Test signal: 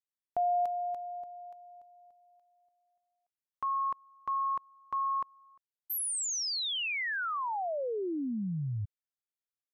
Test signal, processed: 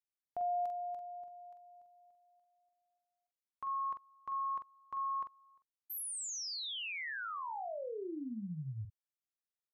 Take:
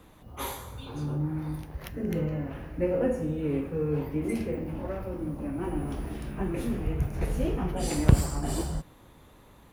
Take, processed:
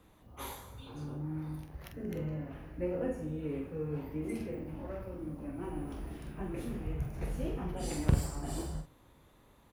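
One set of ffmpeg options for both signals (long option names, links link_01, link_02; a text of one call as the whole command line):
ffmpeg -i in.wav -filter_complex "[0:a]asplit=2[link_01][link_02];[link_02]adelay=45,volume=-7dB[link_03];[link_01][link_03]amix=inputs=2:normalize=0,volume=-8.5dB" out.wav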